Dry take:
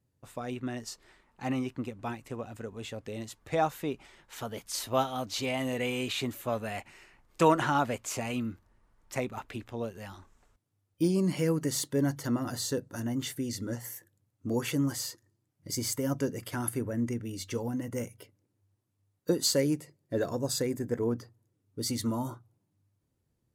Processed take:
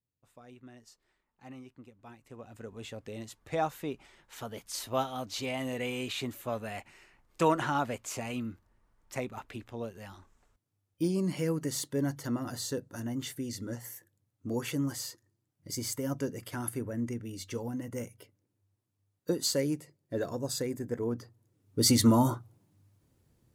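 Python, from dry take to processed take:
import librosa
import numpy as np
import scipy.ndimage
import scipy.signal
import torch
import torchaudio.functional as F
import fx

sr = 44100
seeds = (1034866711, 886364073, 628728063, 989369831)

y = fx.gain(x, sr, db=fx.line((2.02, -16.0), (2.71, -3.0), (21.09, -3.0), (21.86, 9.0)))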